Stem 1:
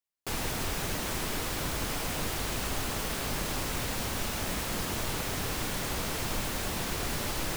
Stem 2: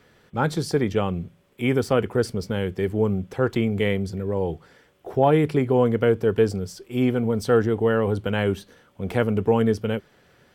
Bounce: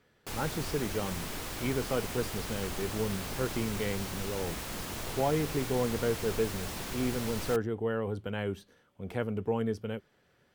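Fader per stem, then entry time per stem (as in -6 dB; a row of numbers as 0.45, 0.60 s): -5.5, -11.0 dB; 0.00, 0.00 s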